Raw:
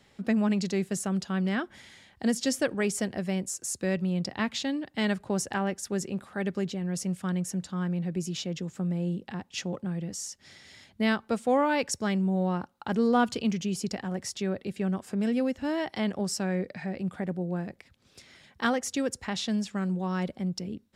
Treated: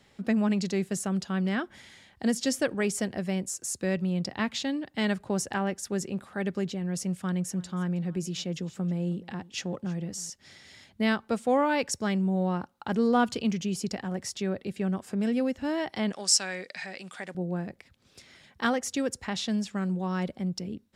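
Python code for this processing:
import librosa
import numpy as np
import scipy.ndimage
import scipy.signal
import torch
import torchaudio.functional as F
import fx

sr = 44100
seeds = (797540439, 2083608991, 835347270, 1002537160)

y = fx.echo_single(x, sr, ms=319, db=-21.0, at=(7.07, 10.3))
y = fx.weighting(y, sr, curve='ITU-R 468', at=(16.12, 17.35))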